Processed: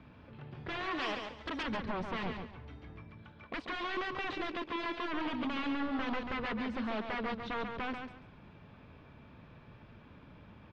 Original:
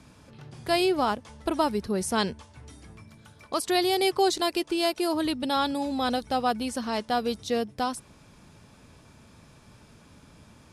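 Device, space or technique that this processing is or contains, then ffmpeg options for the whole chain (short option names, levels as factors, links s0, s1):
synthesiser wavefolder: -filter_complex "[0:a]aeval=exprs='0.0376*(abs(mod(val(0)/0.0376+3,4)-2)-1)':c=same,lowpass=f=3100:w=0.5412,lowpass=f=3100:w=1.3066,asettb=1/sr,asplit=3[s0][s1][s2];[s0]atrim=end=0.914[s3];[s1]atrim=start=0.91:end=1.63,asetpts=PTS-STARTPTS,afade=t=in:d=0.004:c=qsin,afade=t=out:st=0.716:d=0.004:c=qsin,bass=f=250:g=-6,treble=f=4000:g=15[s4];[s2]atrim=start=1.626[s5];[s3][s4]acrossfade=d=0.004:c1=hsin:c2=qsin[s6];[s6][s5]acrossfade=d=0.004:c1=qsin:c2=hsin,aecho=1:1:139|278|417:0.501|0.125|0.0313,volume=0.75"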